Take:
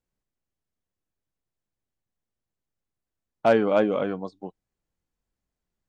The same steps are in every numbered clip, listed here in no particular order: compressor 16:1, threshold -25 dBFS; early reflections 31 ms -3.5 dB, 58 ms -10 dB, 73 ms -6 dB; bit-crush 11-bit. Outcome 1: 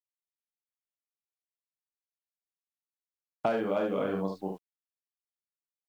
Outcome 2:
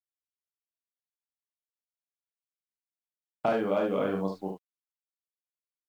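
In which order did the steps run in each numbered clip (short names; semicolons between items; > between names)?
early reflections > compressor > bit-crush; compressor > bit-crush > early reflections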